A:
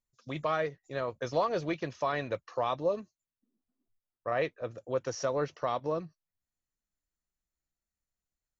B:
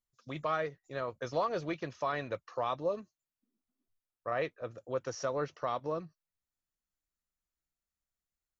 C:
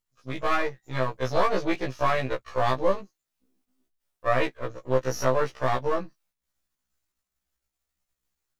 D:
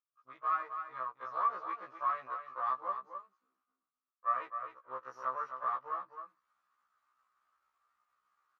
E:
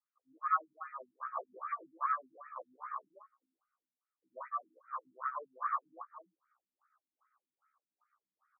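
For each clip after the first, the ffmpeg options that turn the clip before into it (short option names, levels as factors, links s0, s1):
-af "equalizer=f=1300:t=o:w=0.47:g=3.5,volume=0.668"
-af "aeval=exprs='if(lt(val(0),0),0.251*val(0),val(0))':c=same,dynaudnorm=f=230:g=3:m=1.78,afftfilt=real='re*1.73*eq(mod(b,3),0)':imag='im*1.73*eq(mod(b,3),0)':win_size=2048:overlap=0.75,volume=2.82"
-af "areverse,acompressor=mode=upward:threshold=0.0141:ratio=2.5,areverse,bandpass=f=1200:t=q:w=8.8:csg=0,aecho=1:1:260:0.376"
-af "afftfilt=real='re*between(b*sr/1024,210*pow(1800/210,0.5+0.5*sin(2*PI*2.5*pts/sr))/1.41,210*pow(1800/210,0.5+0.5*sin(2*PI*2.5*pts/sr))*1.41)':imag='im*between(b*sr/1024,210*pow(1800/210,0.5+0.5*sin(2*PI*2.5*pts/sr))/1.41,210*pow(1800/210,0.5+0.5*sin(2*PI*2.5*pts/sr))*1.41)':win_size=1024:overlap=0.75,volume=1.5"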